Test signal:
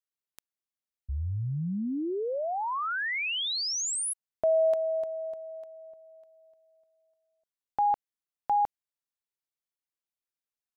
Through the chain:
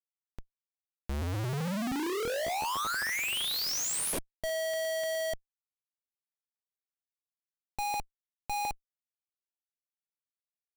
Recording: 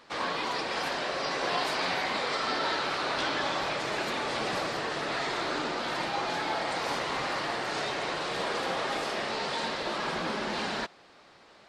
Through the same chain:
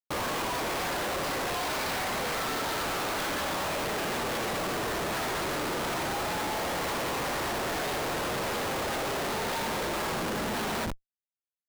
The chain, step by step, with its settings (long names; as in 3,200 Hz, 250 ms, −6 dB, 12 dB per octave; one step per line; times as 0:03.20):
flutter between parallel walls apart 9.9 metres, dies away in 0.43 s
comparator with hysteresis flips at −35 dBFS